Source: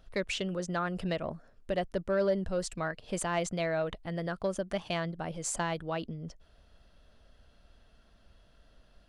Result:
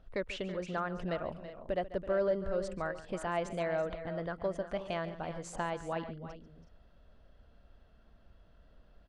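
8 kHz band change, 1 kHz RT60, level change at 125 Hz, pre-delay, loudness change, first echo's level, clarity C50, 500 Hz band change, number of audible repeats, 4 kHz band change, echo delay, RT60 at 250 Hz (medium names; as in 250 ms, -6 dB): -13.5 dB, no reverb, -5.0 dB, no reverb, -3.0 dB, -15.5 dB, no reverb, -1.5 dB, 3, -7.5 dB, 141 ms, no reverb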